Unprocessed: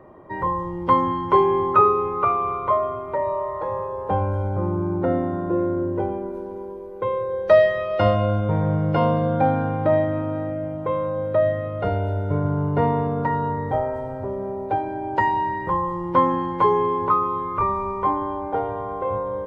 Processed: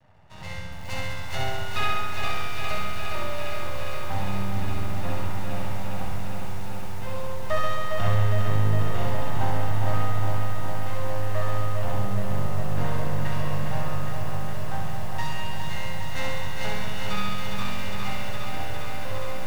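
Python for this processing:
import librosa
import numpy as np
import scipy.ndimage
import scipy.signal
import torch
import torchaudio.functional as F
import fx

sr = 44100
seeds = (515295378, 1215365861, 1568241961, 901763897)

y = fx.lower_of_two(x, sr, delay_ms=1.4)
y = np.maximum(y, 0.0)
y = fx.peak_eq(y, sr, hz=98.0, db=9.0, octaves=1.6)
y = y + 0.34 * np.pad(y, (int(1.1 * sr / 1000.0), 0))[:len(y)]
y = fx.room_flutter(y, sr, wall_m=11.4, rt60_s=1.3)
y = fx.echo_crushed(y, sr, ms=408, feedback_pct=80, bits=6, wet_db=-5.5)
y = y * librosa.db_to_amplitude(-8.5)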